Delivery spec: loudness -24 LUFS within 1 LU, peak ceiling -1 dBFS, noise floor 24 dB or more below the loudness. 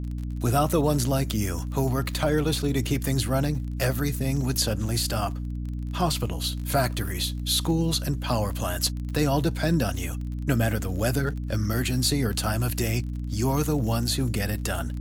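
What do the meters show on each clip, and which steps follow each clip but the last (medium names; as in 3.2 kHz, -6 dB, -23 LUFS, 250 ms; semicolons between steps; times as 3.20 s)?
tick rate 27 per s; hum 60 Hz; highest harmonic 300 Hz; hum level -28 dBFS; loudness -26.0 LUFS; peak level -10.0 dBFS; loudness target -24.0 LUFS
-> de-click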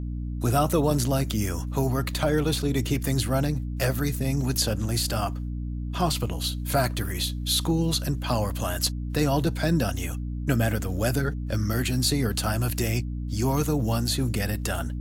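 tick rate 0.53 per s; hum 60 Hz; highest harmonic 300 Hz; hum level -28 dBFS
-> de-hum 60 Hz, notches 5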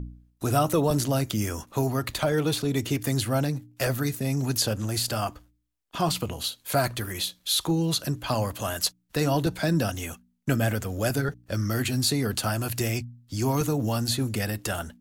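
hum not found; loudness -27.0 LUFS; peak level -11.0 dBFS; loudness target -24.0 LUFS
-> trim +3 dB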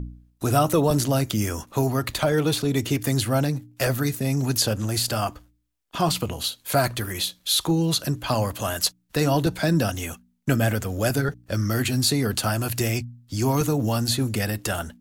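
loudness -24.0 LUFS; peak level -8.0 dBFS; noise floor -64 dBFS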